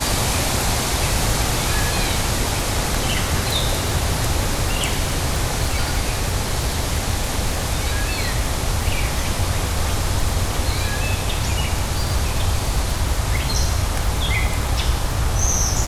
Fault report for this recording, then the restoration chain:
crackle 47/s -23 dBFS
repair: de-click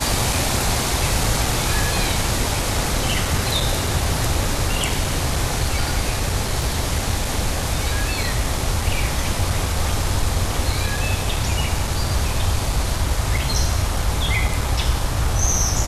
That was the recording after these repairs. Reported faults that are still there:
none

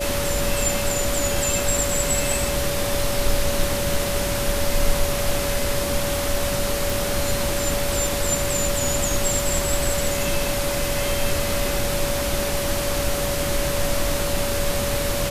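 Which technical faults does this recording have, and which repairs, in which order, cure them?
tone 570 Hz -26 dBFS
6.9 pop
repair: de-click; notch 570 Hz, Q 30

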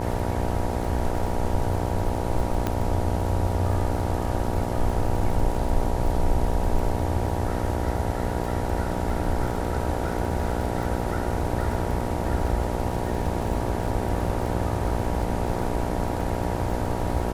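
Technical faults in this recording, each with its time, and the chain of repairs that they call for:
buzz 60 Hz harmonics 16 -29 dBFS
crackle 50/s -32 dBFS
2.67 pop -11 dBFS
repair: de-click; de-hum 60 Hz, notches 16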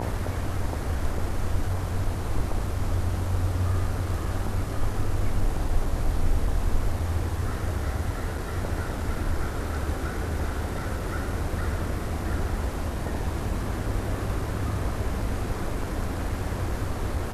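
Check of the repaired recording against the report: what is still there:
none

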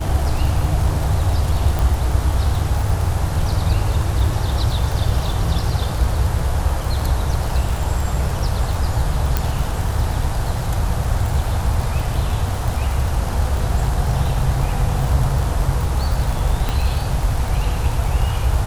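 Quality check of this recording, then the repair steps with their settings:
crackle 51/s -22 dBFS
1.79 pop
9.37 pop
16.69 pop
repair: de-click

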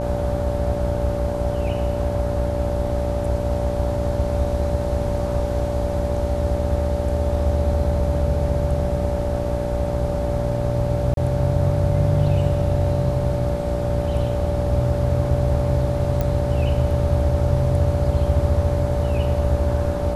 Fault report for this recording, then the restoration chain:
buzz 60 Hz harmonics 15 -26 dBFS
tone 580 Hz -25 dBFS
11.14–11.17 gap 32 ms
16.21 pop -10 dBFS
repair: de-click; de-hum 60 Hz, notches 15; notch 580 Hz, Q 30; interpolate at 11.14, 32 ms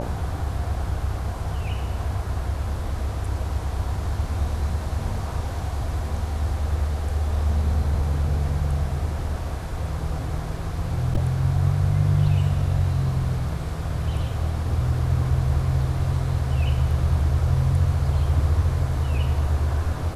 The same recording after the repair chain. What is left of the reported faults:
none

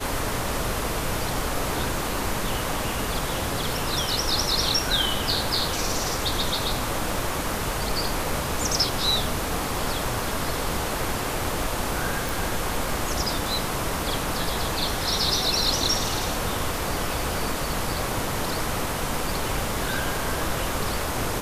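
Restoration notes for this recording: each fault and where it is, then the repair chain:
12.29 pop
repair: de-click

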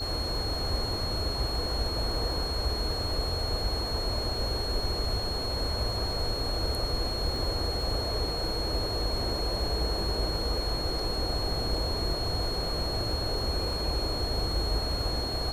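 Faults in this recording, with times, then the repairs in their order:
crackle 22/s -36 dBFS
tone 4300 Hz -33 dBFS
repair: de-click; notch 4300 Hz, Q 30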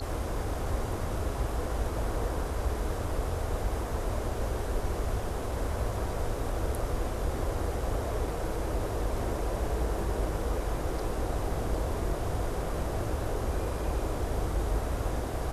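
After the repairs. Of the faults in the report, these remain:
none

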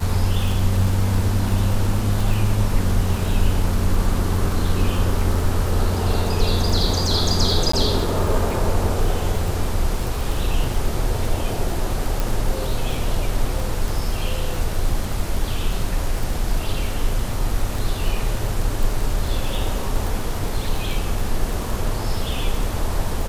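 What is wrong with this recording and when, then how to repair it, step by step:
crackle 26/s -23 dBFS
7.72–7.73 gap 14 ms
12.2 pop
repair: de-click; interpolate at 7.72, 14 ms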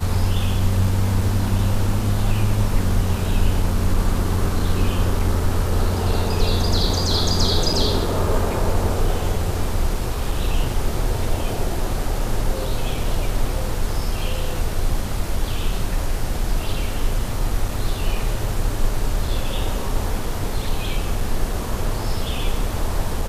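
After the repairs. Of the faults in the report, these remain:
none

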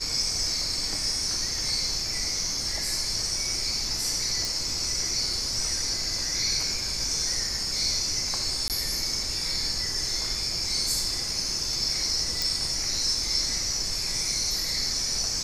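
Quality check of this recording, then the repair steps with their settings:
4.45 pop
8.68–8.7 gap 18 ms
12.42 pop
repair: de-click; interpolate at 8.68, 18 ms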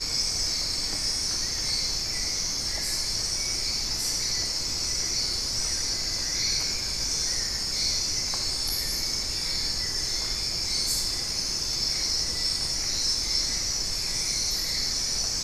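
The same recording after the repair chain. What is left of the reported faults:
none

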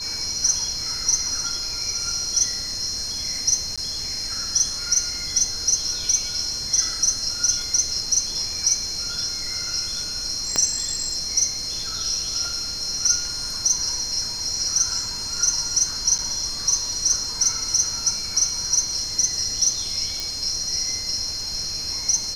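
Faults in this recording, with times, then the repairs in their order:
tone 4200 Hz -30 dBFS
3.76–3.78 gap 16 ms
10.56 pop -7 dBFS
16.18–16.19 gap 8.4 ms
20.2 pop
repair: de-click; notch 4200 Hz, Q 30; interpolate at 3.76, 16 ms; interpolate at 16.18, 8.4 ms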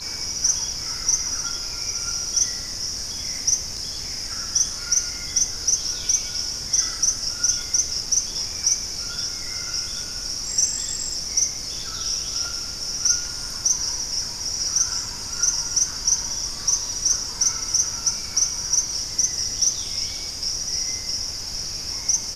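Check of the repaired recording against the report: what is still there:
10.56 pop

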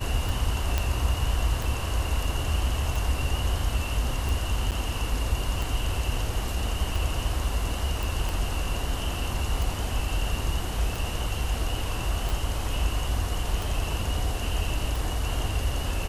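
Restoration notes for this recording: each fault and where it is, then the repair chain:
tick 45 rpm
0.78 pop -10 dBFS
4.71–4.72 gap 8.5 ms
8.03 pop
12.3 pop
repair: de-click; interpolate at 4.71, 8.5 ms

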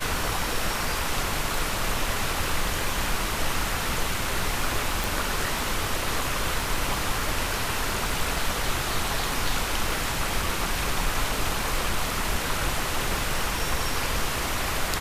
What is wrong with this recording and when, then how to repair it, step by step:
crackle 24/s -32 dBFS
5.04 pop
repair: de-click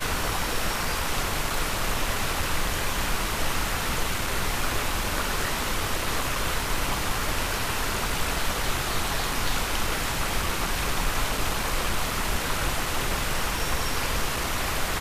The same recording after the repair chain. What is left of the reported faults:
none

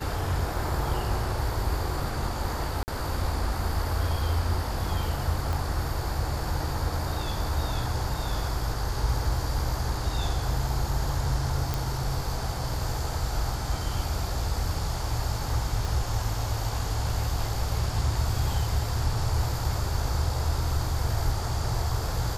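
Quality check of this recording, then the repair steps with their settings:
2.83–2.88 gap 49 ms
5.53 pop
11.74 pop
15.85 pop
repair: de-click; interpolate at 2.83, 49 ms

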